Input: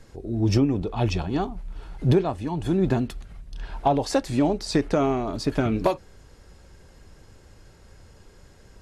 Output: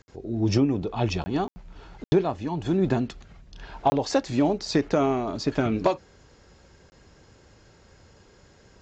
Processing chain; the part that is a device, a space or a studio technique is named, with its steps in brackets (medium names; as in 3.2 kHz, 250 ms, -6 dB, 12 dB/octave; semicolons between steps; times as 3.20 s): call with lost packets (high-pass 110 Hz 6 dB/octave; resampled via 16 kHz; lost packets of 20 ms bursts)